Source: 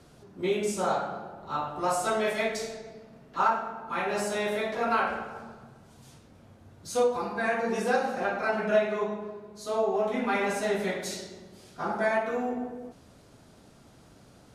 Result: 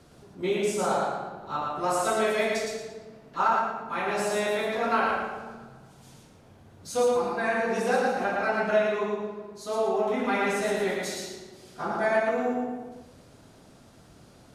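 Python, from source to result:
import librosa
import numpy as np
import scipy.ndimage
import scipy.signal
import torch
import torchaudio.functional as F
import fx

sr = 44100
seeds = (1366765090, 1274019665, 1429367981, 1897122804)

y = fx.echo_feedback(x, sr, ms=114, feedback_pct=30, wet_db=-3.0)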